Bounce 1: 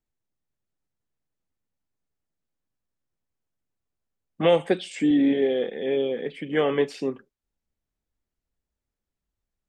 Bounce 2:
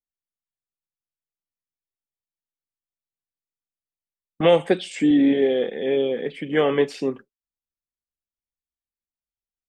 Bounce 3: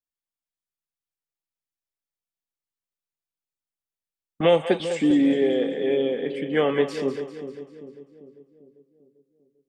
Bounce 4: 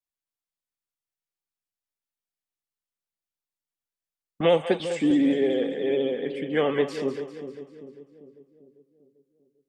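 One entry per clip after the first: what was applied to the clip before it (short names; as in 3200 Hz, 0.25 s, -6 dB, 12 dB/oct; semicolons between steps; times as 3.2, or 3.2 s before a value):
gate with hold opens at -31 dBFS; gain +3 dB
split-band echo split 490 Hz, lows 0.396 s, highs 0.197 s, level -10.5 dB; gain -2 dB
vibrato 14 Hz 43 cents; gain -2 dB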